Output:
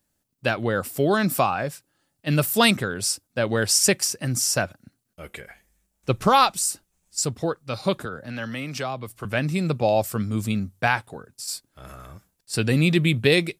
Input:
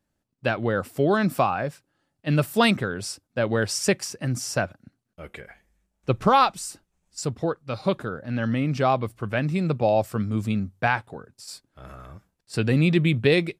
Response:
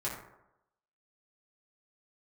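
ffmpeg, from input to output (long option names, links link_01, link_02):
-filter_complex "[0:a]asettb=1/sr,asplit=3[link_01][link_02][link_03];[link_01]atrim=end=8.054[link_04];[link_02]atrim=start=8.05:end=9.25,asetpts=PTS-STARTPTS,afade=type=in:duration=0.004:curve=qsin,afade=type=out:start_time=1.196:duration=0.004:curve=qsin,acrossover=split=220|570[link_05][link_06][link_07];[link_05]acompressor=threshold=-38dB:ratio=4[link_08];[link_06]acompressor=threshold=-38dB:ratio=4[link_09];[link_07]acompressor=threshold=-31dB:ratio=4[link_10];[link_08][link_09][link_10]amix=inputs=3:normalize=0[link_11];[link_03]atrim=start=9.246[link_12];[link_04][link_11]acrossfade=duration=0.004:curve1=hsin:curve2=qsin[link_13];[link_13][link_12]acrossfade=duration=0.004:curve1=qsin:curve2=hsin,crystalizer=i=2.5:c=0"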